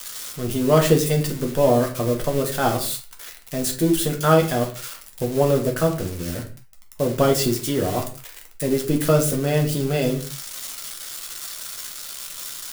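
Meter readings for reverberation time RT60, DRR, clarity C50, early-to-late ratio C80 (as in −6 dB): non-exponential decay, 0.5 dB, 10.0 dB, 15.0 dB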